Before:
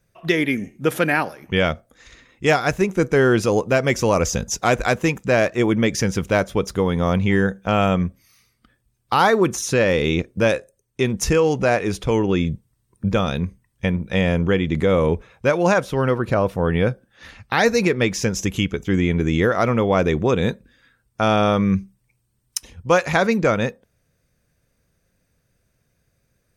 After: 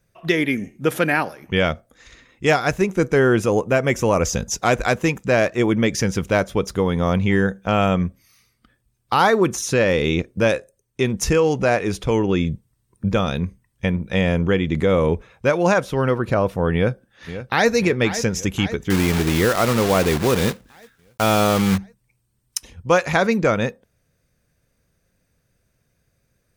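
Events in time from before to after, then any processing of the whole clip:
3.19–4.24 s: peaking EQ 4.5 kHz -10 dB 0.56 oct
16.74–17.70 s: echo throw 530 ms, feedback 65%, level -12 dB
18.90–21.78 s: block-companded coder 3-bit

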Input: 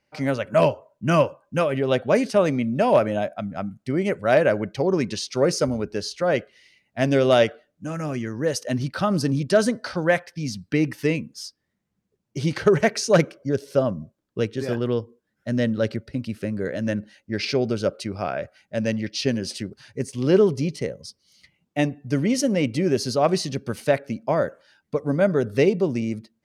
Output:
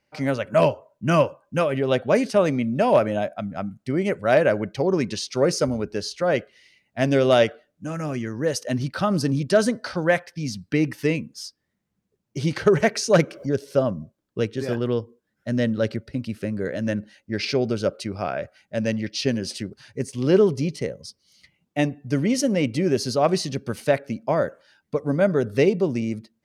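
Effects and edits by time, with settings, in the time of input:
12.78–13.56 s: upward compressor, threshold -25 dBFS

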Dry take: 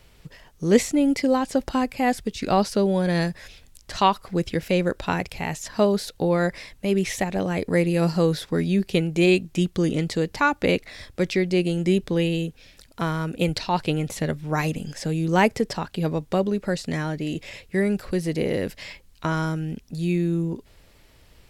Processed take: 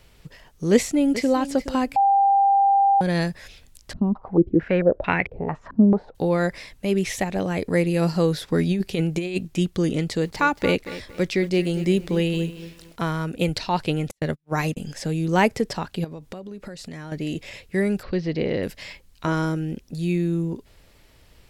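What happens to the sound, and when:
0.72–1.33 s: echo throw 420 ms, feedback 15%, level -14 dB
1.96–3.01 s: bleep 793 Hz -14 dBFS
3.93–6.15 s: step-sequenced low-pass 4.5 Hz 240–2200 Hz
8.48–9.48 s: compressor with a negative ratio -21 dBFS, ratio -0.5
10.00–13.02 s: bit-crushed delay 228 ms, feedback 35%, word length 7-bit, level -14 dB
14.11–14.77 s: gate -28 dBFS, range -43 dB
16.04–17.12 s: compression 16:1, threshold -32 dBFS
18.03–18.63 s: steep low-pass 5.1 kHz
19.27–19.94 s: small resonant body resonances 350/510 Hz, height 8 dB

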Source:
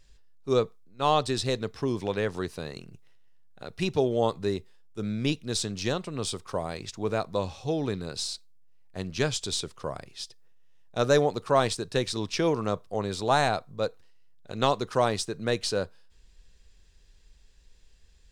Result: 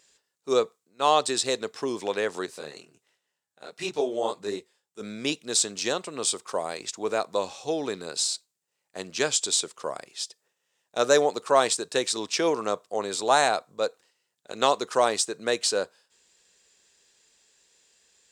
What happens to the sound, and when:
2.46–5.01 s: detune thickener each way 51 cents
whole clip: high-pass 360 Hz 12 dB/octave; peaking EQ 7.6 kHz +9 dB 0.52 oct; trim +3 dB

